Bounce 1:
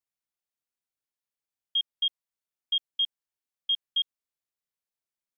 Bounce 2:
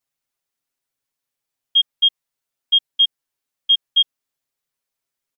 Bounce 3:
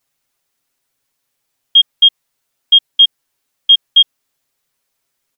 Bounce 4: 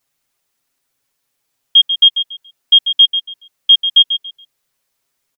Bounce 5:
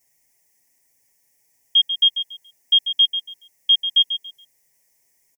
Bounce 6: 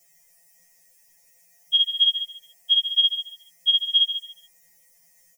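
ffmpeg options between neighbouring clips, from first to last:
ffmpeg -i in.wav -af "aecho=1:1:7.4:1,volume=6dB" out.wav
ffmpeg -i in.wav -af "alimiter=level_in=12.5dB:limit=-1dB:release=50:level=0:latency=1,volume=-1dB" out.wav
ffmpeg -i in.wav -af "aecho=1:1:141|282|423:0.316|0.0727|0.0167" out.wav
ffmpeg -i in.wav -af "firequalizer=gain_entry='entry(930,0);entry(1300,-23);entry(1900,7);entry(2700,-5);entry(3900,-13);entry(5500,6)':delay=0.05:min_phase=1,volume=1.5dB" out.wav
ffmpeg -i in.wav -af "afftfilt=real='re*2.83*eq(mod(b,8),0)':imag='im*2.83*eq(mod(b,8),0)':win_size=2048:overlap=0.75,volume=8dB" out.wav

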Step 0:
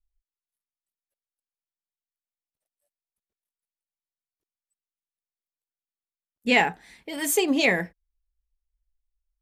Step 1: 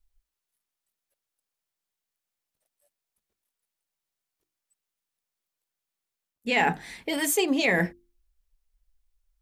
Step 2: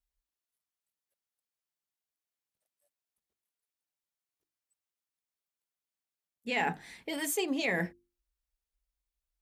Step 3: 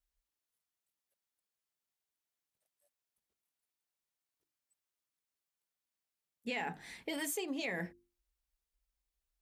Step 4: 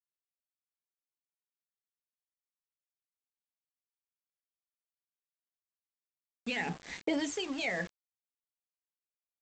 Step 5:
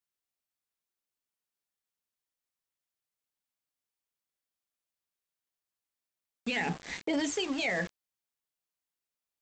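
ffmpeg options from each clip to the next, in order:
ffmpeg -i in.wav -af "bandreject=frequency=50:width_type=h:width=6,bandreject=frequency=100:width_type=h:width=6,bandreject=frequency=150:width_type=h:width=6,bandreject=frequency=200:width_type=h:width=6,bandreject=frequency=250:width_type=h:width=6,bandreject=frequency=300:width_type=h:width=6,bandreject=frequency=350:width_type=h:width=6,areverse,acompressor=threshold=-30dB:ratio=5,areverse,volume=8.5dB" out.wav
ffmpeg -i in.wav -af "highpass=49,volume=-7.5dB" out.wav
ffmpeg -i in.wav -af "acompressor=threshold=-35dB:ratio=6" out.wav
ffmpeg -i in.wav -af "aphaser=in_gain=1:out_gain=1:delay=2.1:decay=0.56:speed=0.43:type=sinusoidal,aresample=16000,aeval=exprs='val(0)*gte(abs(val(0)),0.00531)':channel_layout=same,aresample=44100,volume=3dB" out.wav
ffmpeg -i in.wav -af "alimiter=level_in=2.5dB:limit=-24dB:level=0:latency=1:release=12,volume=-2.5dB,volume=4dB" out.wav

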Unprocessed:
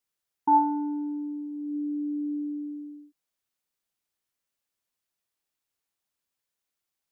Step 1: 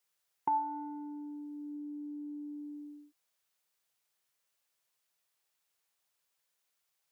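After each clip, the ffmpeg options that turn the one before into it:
ffmpeg -i in.wav -af "acompressor=threshold=-35dB:ratio=4,highpass=140,equalizer=frequency=260:width_type=o:width=0.72:gain=-14,volume=4.5dB" out.wav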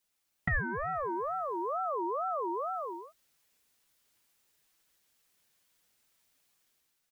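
ffmpeg -i in.wav -af "aecho=1:1:6.1:0.79,dynaudnorm=framelen=240:gausssize=5:maxgain=7dB,aeval=exprs='val(0)*sin(2*PI*840*n/s+840*0.25/2.2*sin(2*PI*2.2*n/s))':channel_layout=same,volume=2dB" out.wav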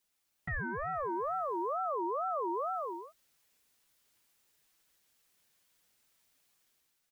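ffmpeg -i in.wav -af "alimiter=level_in=4dB:limit=-24dB:level=0:latency=1:release=11,volume=-4dB" out.wav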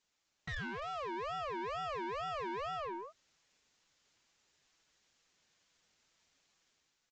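ffmpeg -i in.wav -af "aeval=exprs='0.0422*(cos(1*acos(clip(val(0)/0.0422,-1,1)))-cos(1*PI/2))+0.000668*(cos(8*acos(clip(val(0)/0.0422,-1,1)))-cos(8*PI/2))':channel_layout=same,aresample=16000,asoftclip=type=tanh:threshold=-39dB,aresample=44100,volume=2dB" out.wav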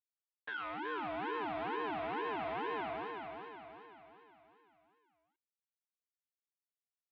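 ffmpeg -i in.wav -af "acrusher=bits=6:dc=4:mix=0:aa=0.000001,aecho=1:1:375|750|1125|1500|1875|2250:0.562|0.276|0.135|0.0662|0.0324|0.0159,highpass=frequency=590:width_type=q:width=0.5412,highpass=frequency=590:width_type=q:width=1.307,lowpass=frequency=3500:width_type=q:width=0.5176,lowpass=frequency=3500:width_type=q:width=0.7071,lowpass=frequency=3500:width_type=q:width=1.932,afreqshift=-280,volume=6.5dB" out.wav

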